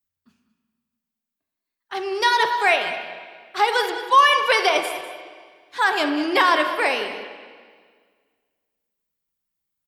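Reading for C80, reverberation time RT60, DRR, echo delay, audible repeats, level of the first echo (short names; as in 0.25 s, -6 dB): 8.0 dB, 1.7 s, 5.0 dB, 0.198 s, 1, -14.5 dB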